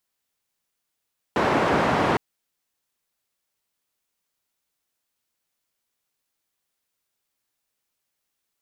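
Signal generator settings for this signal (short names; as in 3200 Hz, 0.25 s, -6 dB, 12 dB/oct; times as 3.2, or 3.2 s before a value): noise band 110–1000 Hz, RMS -21 dBFS 0.81 s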